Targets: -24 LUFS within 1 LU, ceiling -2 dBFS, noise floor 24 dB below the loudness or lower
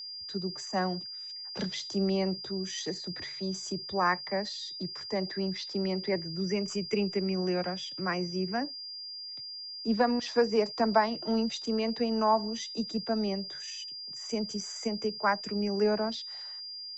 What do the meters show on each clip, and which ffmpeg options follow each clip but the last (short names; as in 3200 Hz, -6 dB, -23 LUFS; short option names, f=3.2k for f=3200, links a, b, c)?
steady tone 4800 Hz; tone level -39 dBFS; loudness -31.5 LUFS; peak -11.5 dBFS; loudness target -24.0 LUFS
-> -af "bandreject=f=4.8k:w=30"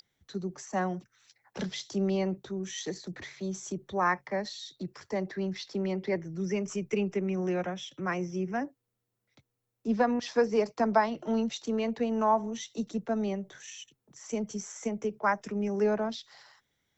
steady tone none; loudness -31.5 LUFS; peak -11.5 dBFS; loudness target -24.0 LUFS
-> -af "volume=7.5dB"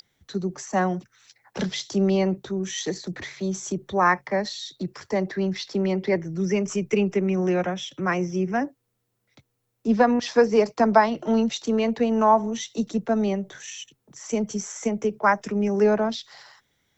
loudness -24.0 LUFS; peak -4.0 dBFS; noise floor -76 dBFS